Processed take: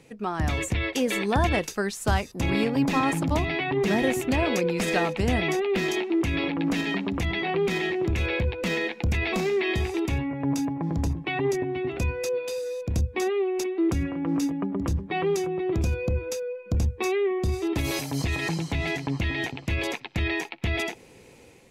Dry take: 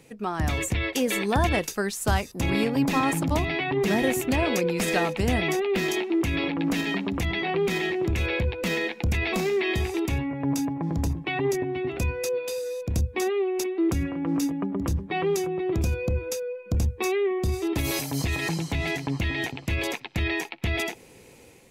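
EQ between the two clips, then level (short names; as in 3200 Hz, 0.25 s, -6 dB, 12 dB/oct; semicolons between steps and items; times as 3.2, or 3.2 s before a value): high shelf 11000 Hz -11.5 dB; 0.0 dB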